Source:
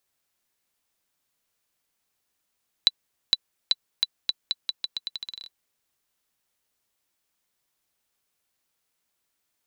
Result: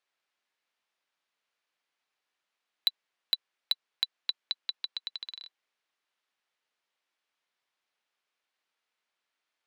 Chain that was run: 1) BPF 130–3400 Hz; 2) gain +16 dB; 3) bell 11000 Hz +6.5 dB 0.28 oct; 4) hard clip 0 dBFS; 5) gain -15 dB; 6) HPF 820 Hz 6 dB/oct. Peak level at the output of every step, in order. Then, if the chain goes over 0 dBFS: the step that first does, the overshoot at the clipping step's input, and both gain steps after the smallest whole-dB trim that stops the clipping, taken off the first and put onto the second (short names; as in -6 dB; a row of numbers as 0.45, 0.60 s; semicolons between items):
-8.0, +8.0, +8.0, 0.0, -15.0, -13.0 dBFS; step 2, 8.0 dB; step 2 +8 dB, step 5 -7 dB